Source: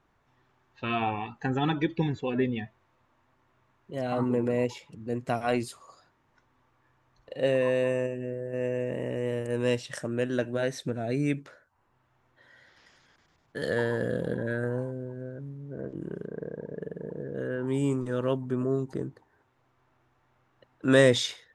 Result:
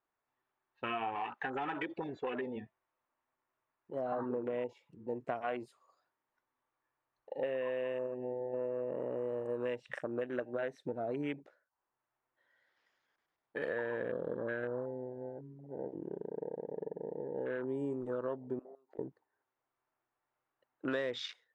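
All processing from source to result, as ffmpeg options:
-filter_complex "[0:a]asettb=1/sr,asplit=3[a][b][c];[a]atrim=end=1.154[d];[b]atrim=start=1.15:end=2.56,asetpts=PTS-STARTPTS,afade=t=in:d=0.004:c=qsin,afade=t=out:st=1.406:d=0.004:c=qsin,acompressor=threshold=-29dB:ratio=6:attack=3.2:release=140:knee=1:detection=peak,asplit=2[e][f];[f]highpass=f=720:p=1,volume=14dB,asoftclip=type=tanh:threshold=-22.5dB[g];[e][g]amix=inputs=2:normalize=0,lowpass=f=6.3k:p=1,volume=-6dB[h];[c]atrim=start=2.556[i];[d][h]acrossfade=d=0.004:c1=hsin:c2=qsin[j];[j][i]acrossfade=d=0.004:c1=qsin:c2=hsin,asettb=1/sr,asplit=3[k][l][m];[k]atrim=end=18.594[n];[l]atrim=start=18.59:end=18.99,asetpts=PTS-STARTPTS,afade=t=in:d=0.004:c=qsin,afade=t=out:st=0.396:d=0.004:c=qsin,highpass=550,lowpass=2.9k,acompressor=threshold=-47dB:ratio=5:attack=3.2:release=140:knee=1:detection=peak[o];[m]atrim=start=18.986[p];[n][o]acrossfade=d=0.004:c1=hsin:c2=qsin[q];[q][p]acrossfade=d=0.004:c1=qsin:c2=hsin,afwtdn=0.0126,bass=f=250:g=-15,treble=f=4k:g=-8,acompressor=threshold=-33dB:ratio=6"

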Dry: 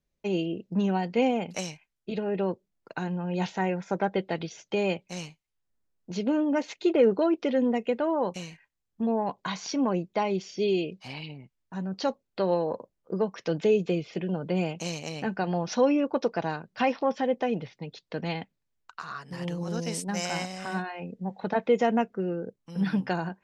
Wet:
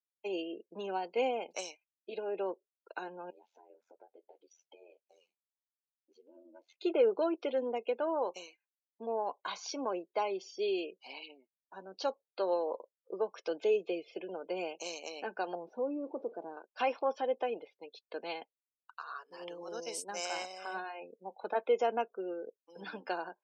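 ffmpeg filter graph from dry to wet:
-filter_complex "[0:a]asettb=1/sr,asplit=3[a][b][c];[a]atrim=end=3.304[d];[b]atrim=start=3.3:end=6.74,asetpts=PTS-STARTPTS,afade=t=in:d=0.004:c=qsin,afade=t=out:st=3.436:d=0.004:c=qsin,acompressor=threshold=-39dB:ratio=8:attack=3.2:release=140:knee=1:detection=peak,flanger=delay=6.5:depth=6.9:regen=-58:speed=1.7:shape=sinusoidal,aeval=exprs='val(0)*sin(2*PI*43*n/s)':c=same[e];[c]atrim=start=6.736[f];[d][e]acrossfade=d=0.004:c1=hsin:c2=qsin[g];[g][f]acrossfade=d=0.004:c1=qsin:c2=hsin,asettb=1/sr,asplit=3[h][i][j];[h]atrim=end=15.554[k];[i]atrim=start=15.55:end=16.57,asetpts=PTS-STARTPTS,afade=t=in:d=0.004:c=qsin,afade=t=out:st=1.016:d=0.004:c=qsin,aeval=exprs='val(0)+0.5*0.02*sgn(val(0))':c=same,bandpass=f=200:t=q:w=0.92[l];[j]atrim=start=16.566[m];[k][l]acrossfade=d=0.004:c1=hsin:c2=qsin[n];[n][m]acrossfade=d=0.004:c1=qsin:c2=hsin,highpass=f=360:w=0.5412,highpass=f=360:w=1.3066,bandreject=f=1.9k:w=5.7,afftdn=nr=20:nf=-48,volume=-5dB"

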